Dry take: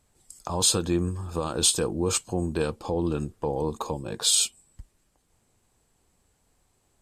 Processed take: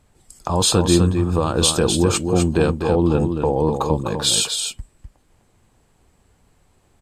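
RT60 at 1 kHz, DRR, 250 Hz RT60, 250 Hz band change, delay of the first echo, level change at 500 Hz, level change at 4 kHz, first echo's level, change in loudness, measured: no reverb audible, no reverb audible, no reverb audible, +10.5 dB, 253 ms, +9.5 dB, +6.0 dB, −6.0 dB, +7.0 dB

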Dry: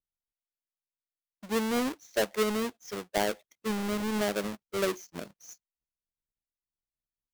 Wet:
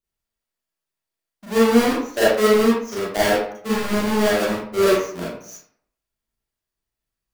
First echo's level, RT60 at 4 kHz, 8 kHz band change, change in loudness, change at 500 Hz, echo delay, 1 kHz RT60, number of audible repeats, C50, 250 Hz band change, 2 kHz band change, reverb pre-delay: no echo audible, 0.40 s, +8.5 dB, +12.0 dB, +13.5 dB, no echo audible, 0.65 s, no echo audible, −1.5 dB, +11.5 dB, +11.5 dB, 31 ms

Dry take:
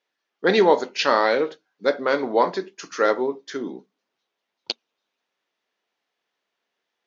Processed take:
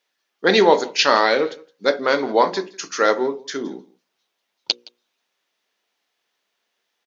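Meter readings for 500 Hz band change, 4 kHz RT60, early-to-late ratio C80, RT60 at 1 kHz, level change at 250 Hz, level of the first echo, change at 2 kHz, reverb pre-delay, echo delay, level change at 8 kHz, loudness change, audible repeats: +2.0 dB, no reverb audible, no reverb audible, no reverb audible, +2.0 dB, −23.0 dB, +4.0 dB, no reverb audible, 167 ms, can't be measured, +3.0 dB, 1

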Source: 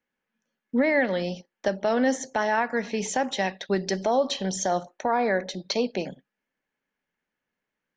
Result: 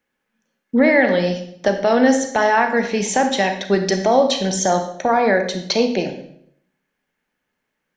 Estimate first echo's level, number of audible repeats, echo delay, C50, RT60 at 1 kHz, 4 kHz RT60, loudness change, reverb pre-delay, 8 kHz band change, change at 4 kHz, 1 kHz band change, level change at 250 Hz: no echo audible, no echo audible, no echo audible, 8.0 dB, 0.65 s, 0.55 s, +8.5 dB, 29 ms, +8.5 dB, +8.5 dB, +8.5 dB, +9.0 dB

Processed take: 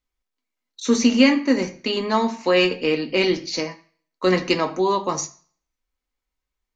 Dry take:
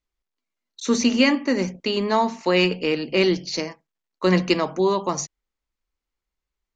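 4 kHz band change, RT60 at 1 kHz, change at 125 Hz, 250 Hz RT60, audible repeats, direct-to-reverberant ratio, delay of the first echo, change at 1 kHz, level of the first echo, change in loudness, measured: +1.0 dB, 0.45 s, −4.0 dB, 0.35 s, no echo audible, 4.5 dB, no echo audible, +0.5 dB, no echo audible, +1.0 dB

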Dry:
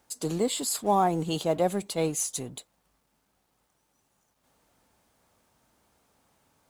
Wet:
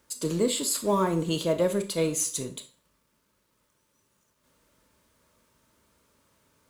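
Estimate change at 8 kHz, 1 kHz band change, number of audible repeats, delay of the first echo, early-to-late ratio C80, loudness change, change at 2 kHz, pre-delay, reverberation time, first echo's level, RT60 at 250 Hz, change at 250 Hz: +2.0 dB, −5.5 dB, no echo audible, no echo audible, 18.0 dB, +1.0 dB, +2.0 dB, 25 ms, 0.45 s, no echo audible, 0.45 s, +2.0 dB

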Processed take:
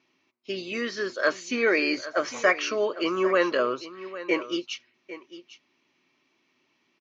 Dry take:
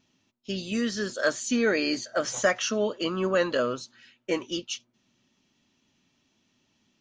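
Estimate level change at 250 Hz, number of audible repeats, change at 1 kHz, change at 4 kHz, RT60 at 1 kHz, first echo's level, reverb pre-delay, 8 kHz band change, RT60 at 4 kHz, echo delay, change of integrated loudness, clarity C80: −1.0 dB, 1, +4.0 dB, −1.0 dB, no reverb audible, −15.0 dB, no reverb audible, −7.5 dB, no reverb audible, 802 ms, +1.5 dB, no reverb audible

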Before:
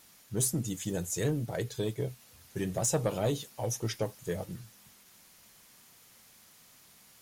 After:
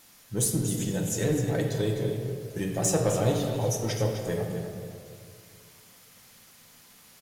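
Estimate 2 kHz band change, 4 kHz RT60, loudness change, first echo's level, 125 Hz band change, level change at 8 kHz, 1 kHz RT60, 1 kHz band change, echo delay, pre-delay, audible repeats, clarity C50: +5.0 dB, 1.2 s, +5.0 dB, −9.5 dB, +6.0 dB, +3.5 dB, 1.7 s, +5.0 dB, 256 ms, 4 ms, 1, 2.0 dB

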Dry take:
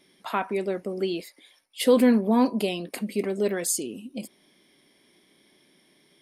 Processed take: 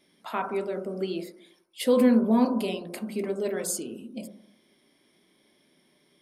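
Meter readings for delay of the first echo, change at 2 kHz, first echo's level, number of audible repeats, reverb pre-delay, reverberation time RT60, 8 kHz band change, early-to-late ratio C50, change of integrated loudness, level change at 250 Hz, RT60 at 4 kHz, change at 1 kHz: no echo audible, −4.0 dB, no echo audible, no echo audible, 6 ms, 0.70 s, −4.5 dB, 12.0 dB, −1.5 dB, −1.0 dB, 0.70 s, −2.5 dB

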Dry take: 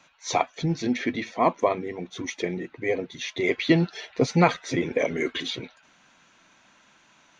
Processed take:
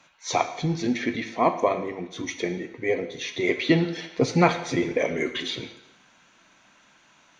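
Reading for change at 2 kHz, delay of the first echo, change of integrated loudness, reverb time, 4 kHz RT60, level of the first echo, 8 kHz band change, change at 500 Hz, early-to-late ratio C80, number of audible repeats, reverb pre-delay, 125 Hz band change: +0.5 dB, no echo audible, +0.5 dB, 0.90 s, 0.90 s, no echo audible, can't be measured, +0.5 dB, 12.5 dB, no echo audible, 12 ms, −0.5 dB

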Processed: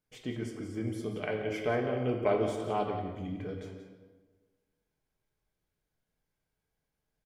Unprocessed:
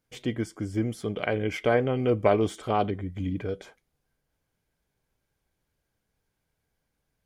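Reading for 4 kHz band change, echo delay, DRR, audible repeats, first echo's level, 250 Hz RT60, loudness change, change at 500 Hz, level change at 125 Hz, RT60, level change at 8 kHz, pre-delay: −6.5 dB, 177 ms, 1.0 dB, 1, −11.5 dB, 1.6 s, −6.0 dB, −5.5 dB, −7.0 dB, 1.3 s, can't be measured, 5 ms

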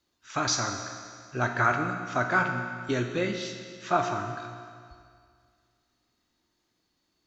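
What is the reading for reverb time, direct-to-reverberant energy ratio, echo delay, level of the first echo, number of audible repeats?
2.1 s, 4.0 dB, no echo audible, no echo audible, no echo audible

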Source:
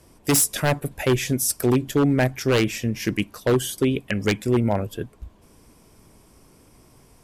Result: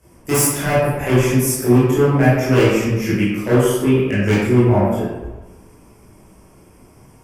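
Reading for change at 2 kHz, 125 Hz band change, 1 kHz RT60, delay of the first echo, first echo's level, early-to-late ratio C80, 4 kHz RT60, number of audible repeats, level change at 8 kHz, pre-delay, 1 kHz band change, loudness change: +5.5 dB, +8.0 dB, 1.2 s, no echo audible, no echo audible, 1.0 dB, 0.70 s, no echo audible, +1.5 dB, 17 ms, +7.0 dB, +6.0 dB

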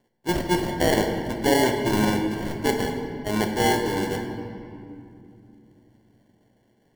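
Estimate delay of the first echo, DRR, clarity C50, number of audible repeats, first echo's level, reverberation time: no echo audible, 2.5 dB, 4.5 dB, no echo audible, no echo audible, 2.6 s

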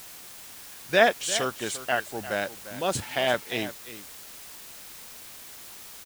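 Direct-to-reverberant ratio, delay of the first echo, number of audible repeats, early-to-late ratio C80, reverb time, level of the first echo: no reverb audible, 348 ms, 1, no reverb audible, no reverb audible, −14.0 dB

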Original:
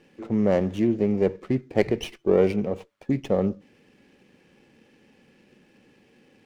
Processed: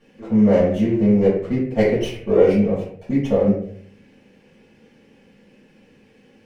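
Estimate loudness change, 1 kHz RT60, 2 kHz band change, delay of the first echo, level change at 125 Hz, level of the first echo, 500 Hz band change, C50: +6.0 dB, 0.45 s, +4.0 dB, no echo audible, +6.5 dB, no echo audible, +5.5 dB, 3.0 dB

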